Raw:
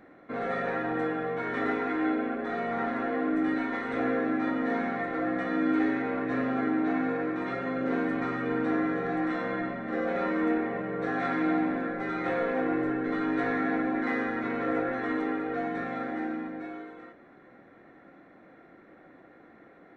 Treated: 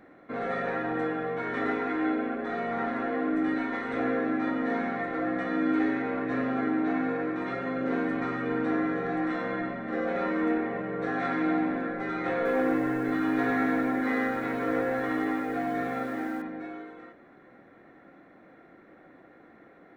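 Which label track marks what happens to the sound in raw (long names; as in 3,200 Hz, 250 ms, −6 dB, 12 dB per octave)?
12.350000	16.420000	feedback echo at a low word length 101 ms, feedback 35%, word length 9 bits, level −4.5 dB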